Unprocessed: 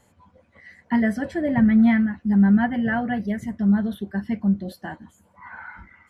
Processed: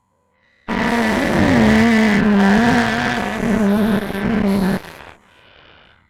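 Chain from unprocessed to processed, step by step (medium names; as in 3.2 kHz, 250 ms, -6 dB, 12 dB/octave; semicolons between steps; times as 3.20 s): every event in the spectrogram widened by 480 ms; one-sided clip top -15 dBFS, bottom -6 dBFS; Chebyshev shaper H 3 -16 dB, 5 -29 dB, 7 -19 dB, 8 -26 dB, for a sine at -6 dBFS; trim +4.5 dB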